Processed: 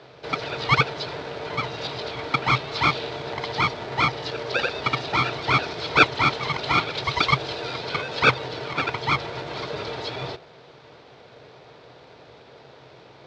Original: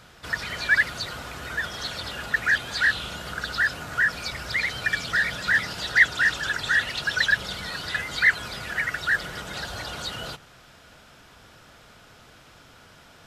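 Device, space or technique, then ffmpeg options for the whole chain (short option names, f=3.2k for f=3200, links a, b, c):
ring modulator pedal into a guitar cabinet: -filter_complex "[0:a]asettb=1/sr,asplit=3[a][b][c];[a]atrim=end=6.984[d];[b]atrim=start=6.98:end=7.78,asetpts=PTS-STARTPTS,afade=t=in:d=0.004:c=qsin,afade=t=out:st=0.796:d=0.004:c=qsin,highshelf=f=9.4k:g=11[e];[c]atrim=start=7.776[f];[d][e]acrossfade=d=0.004:c1=hsin:c2=qsin[g];[g][f]acrossfade=d=0.004:c1=qsin:c2=hsin,aeval=exprs='val(0)*sgn(sin(2*PI*520*n/s))':c=same,highpass=80,equalizer=f=130:t=q:w=4:g=10,equalizer=f=200:t=q:w=4:g=-6,equalizer=f=480:t=q:w=4:g=7,equalizer=f=1.1k:t=q:w=4:g=-5,equalizer=f=1.9k:t=q:w=4:g=-9,equalizer=f=2.9k:t=q:w=4:g=-7,lowpass=f=4.1k:w=0.5412,lowpass=f=4.1k:w=1.3066,volume=4.5dB"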